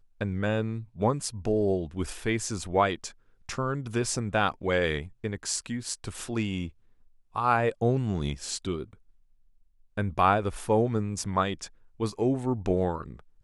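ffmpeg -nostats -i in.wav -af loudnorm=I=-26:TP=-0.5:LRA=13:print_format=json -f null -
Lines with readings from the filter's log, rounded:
"input_i" : "-28.8",
"input_tp" : "-8.6",
"input_lra" : "1.5",
"input_thresh" : "-39.2",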